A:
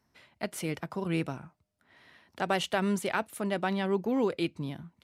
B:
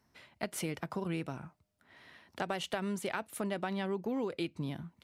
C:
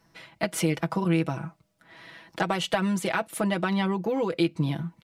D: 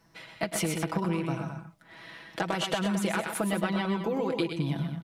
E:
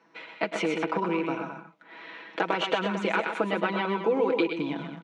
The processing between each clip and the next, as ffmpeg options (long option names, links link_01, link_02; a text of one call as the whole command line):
ffmpeg -i in.wav -af "acompressor=threshold=-33dB:ratio=6,volume=1dB" out.wav
ffmpeg -i in.wav -af "highshelf=frequency=10000:gain=-4.5,aecho=1:1:6.1:0.78,volume=8dB" out.wav
ffmpeg -i in.wav -filter_complex "[0:a]acompressor=threshold=-26dB:ratio=6,asplit=2[link_01][link_02];[link_02]aecho=0:1:106|125|216:0.237|0.473|0.282[link_03];[link_01][link_03]amix=inputs=2:normalize=0" out.wav
ffmpeg -i in.wav -af "acrusher=bits=8:mode=log:mix=0:aa=0.000001,highpass=frequency=210:width=0.5412,highpass=frequency=210:width=1.3066,equalizer=frequency=300:width_type=q:width=4:gain=4,equalizer=frequency=460:width_type=q:width=4:gain=8,equalizer=frequency=940:width_type=q:width=4:gain=6,equalizer=frequency=1400:width_type=q:width=4:gain=5,equalizer=frequency=2400:width_type=q:width=4:gain=7,equalizer=frequency=5000:width_type=q:width=4:gain=-9,lowpass=frequency=5500:width=0.5412,lowpass=frequency=5500:width=1.3066" out.wav